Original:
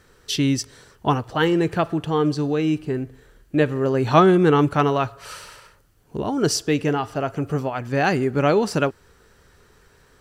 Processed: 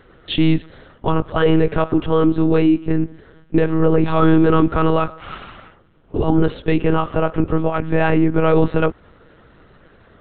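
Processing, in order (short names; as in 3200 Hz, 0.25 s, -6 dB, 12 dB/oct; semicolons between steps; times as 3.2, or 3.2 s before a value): small resonant body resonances 240/500/1200 Hz, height 8 dB, ringing for 30 ms; limiter -10.5 dBFS, peak gain reduction 11.5 dB; monotone LPC vocoder at 8 kHz 160 Hz; gain +4 dB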